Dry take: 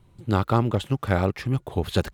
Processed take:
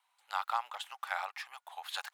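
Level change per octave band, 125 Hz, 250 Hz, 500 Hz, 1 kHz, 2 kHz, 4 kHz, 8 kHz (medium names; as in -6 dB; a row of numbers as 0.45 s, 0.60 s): under -40 dB, under -40 dB, -25.5 dB, -6.5 dB, -5.5 dB, -6.0 dB, -6.5 dB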